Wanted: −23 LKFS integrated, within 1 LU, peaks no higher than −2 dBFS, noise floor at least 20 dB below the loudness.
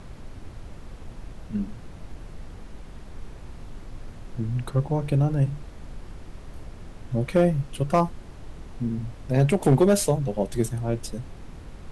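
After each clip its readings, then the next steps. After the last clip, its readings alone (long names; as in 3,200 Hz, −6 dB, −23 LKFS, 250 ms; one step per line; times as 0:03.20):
share of clipped samples 0.3%; peaks flattened at −11.5 dBFS; background noise floor −43 dBFS; target noise floor −45 dBFS; integrated loudness −25.0 LKFS; sample peak −11.5 dBFS; target loudness −23.0 LKFS
→ clipped peaks rebuilt −11.5 dBFS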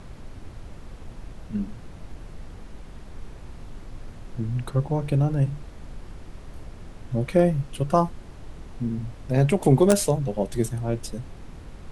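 share of clipped samples 0.0%; background noise floor −43 dBFS; target noise floor −45 dBFS
→ noise reduction from a noise print 6 dB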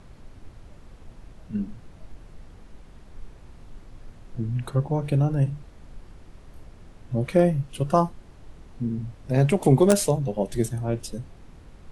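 background noise floor −49 dBFS; integrated loudness −24.5 LKFS; sample peak −2.5 dBFS; target loudness −23.0 LKFS
→ level +1.5 dB
brickwall limiter −2 dBFS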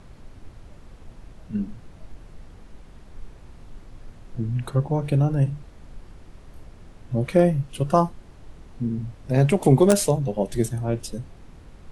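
integrated loudness −23.0 LKFS; sample peak −2.0 dBFS; background noise floor −47 dBFS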